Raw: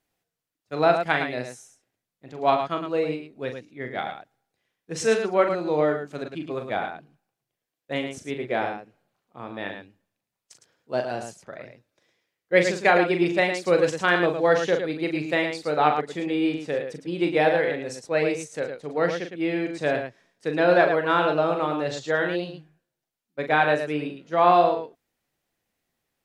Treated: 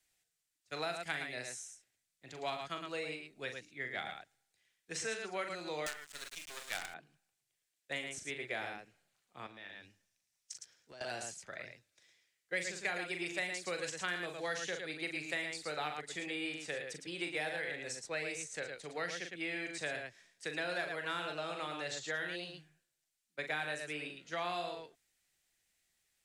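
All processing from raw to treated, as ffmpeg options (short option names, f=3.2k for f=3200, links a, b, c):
-filter_complex "[0:a]asettb=1/sr,asplit=3[a][b][c];[a]atrim=end=5.864[d];[b]atrim=start=5.86:end=6.94,asetpts=PTS-STARTPTS,afade=t=in:d=0.004:c=qsin,afade=t=out:st=1.076:d=0.004:c=qsin,highpass=750,highshelf=f=5.3k:g=11,acrusher=bits=5:dc=4:mix=0:aa=0.000001[e];[c]atrim=start=6.936[f];[d][e]acrossfade=d=0.004:c1=hsin:c2=qsin[g];[g][f]acrossfade=d=0.004:c1=qsin:c2=hsin,asettb=1/sr,asplit=3[h][i][j];[h]atrim=end=9.464[k];[i]atrim=start=9.46:end=11.01,asetpts=PTS-STARTPTS,afade=t=in:d=0.004:c=qsin,afade=t=out:st=1.546:d=0.004:c=qsin,equalizer=f=5.7k:w=4.7:g=8.5,acompressor=threshold=-41dB:ratio=8:attack=3.2:release=140:knee=1:detection=peak[l];[j]atrim=start=11.006[m];[k][l]acrossfade=d=0.004:c1=hsin:c2=qsin[n];[n][m]acrossfade=d=0.004:c1=qsin:c2=hsin,equalizer=f=125:t=o:w=1:g=-5,equalizer=f=250:t=o:w=1:g=-8,equalizer=f=500:t=o:w=1:g=-6,equalizer=f=1k:t=o:w=1:g=-6,equalizer=f=2k:t=o:w=1:g=4,equalizer=f=4k:t=o:w=1:g=3,equalizer=f=8k:t=o:w=1:g=10,acrossover=split=160|420|2200|7000[o][p][q][r][s];[o]acompressor=threshold=-57dB:ratio=4[t];[p]acompressor=threshold=-49dB:ratio=4[u];[q]acompressor=threshold=-37dB:ratio=4[v];[r]acompressor=threshold=-44dB:ratio=4[w];[s]acompressor=threshold=-48dB:ratio=4[x];[t][u][v][w][x]amix=inputs=5:normalize=0,volume=-3dB"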